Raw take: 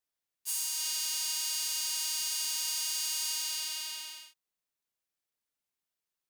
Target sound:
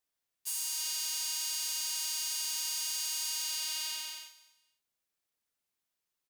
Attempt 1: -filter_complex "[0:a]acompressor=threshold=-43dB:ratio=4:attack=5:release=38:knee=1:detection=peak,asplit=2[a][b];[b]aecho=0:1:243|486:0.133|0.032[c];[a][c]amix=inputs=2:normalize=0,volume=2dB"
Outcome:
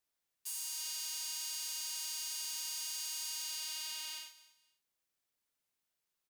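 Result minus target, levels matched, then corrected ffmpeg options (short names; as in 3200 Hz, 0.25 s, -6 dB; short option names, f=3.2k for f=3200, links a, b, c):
compressor: peak gain reduction +5.5 dB
-filter_complex "[0:a]acompressor=threshold=-35.5dB:ratio=4:attack=5:release=38:knee=1:detection=peak,asplit=2[a][b];[b]aecho=0:1:243|486:0.133|0.032[c];[a][c]amix=inputs=2:normalize=0,volume=2dB"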